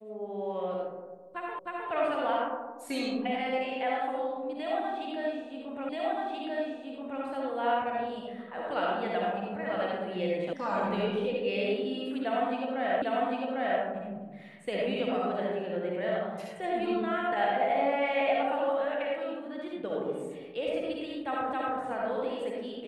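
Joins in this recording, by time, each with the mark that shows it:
1.59 repeat of the last 0.31 s
5.89 repeat of the last 1.33 s
10.53 sound cut off
13.02 repeat of the last 0.8 s
21.53 repeat of the last 0.27 s

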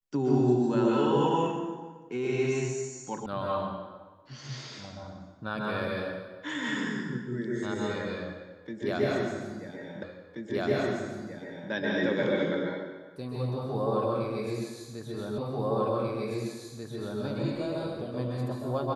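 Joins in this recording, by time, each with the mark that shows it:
3.26 sound cut off
10.03 repeat of the last 1.68 s
15.38 repeat of the last 1.84 s

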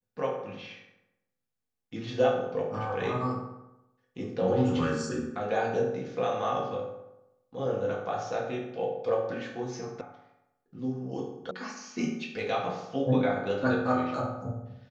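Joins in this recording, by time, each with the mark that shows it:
10.01 sound cut off
11.51 sound cut off

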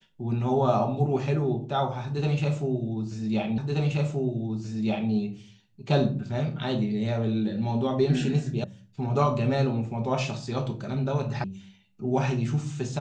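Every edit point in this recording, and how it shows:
3.58 repeat of the last 1.53 s
8.64 sound cut off
11.44 sound cut off

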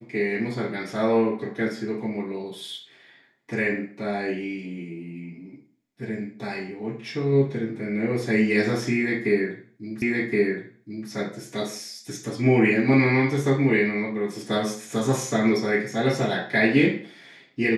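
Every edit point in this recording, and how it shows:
10.02 repeat of the last 1.07 s

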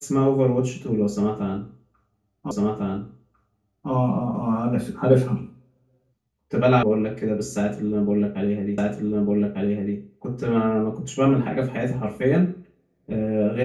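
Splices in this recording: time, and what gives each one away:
2.51 repeat of the last 1.4 s
6.83 sound cut off
8.78 repeat of the last 1.2 s

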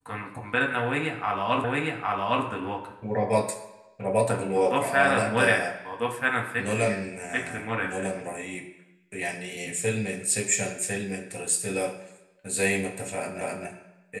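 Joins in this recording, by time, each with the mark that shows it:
1.64 repeat of the last 0.81 s
13.41 repeat of the last 0.26 s

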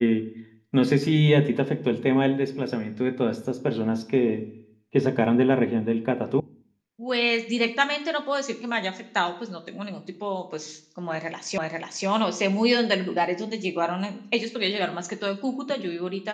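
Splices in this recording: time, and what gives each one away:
6.4 sound cut off
11.58 repeat of the last 0.49 s

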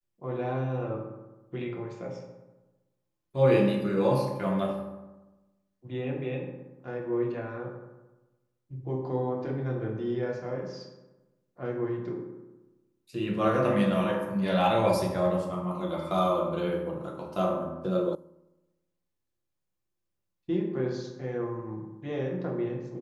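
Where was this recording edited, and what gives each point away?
18.15 sound cut off

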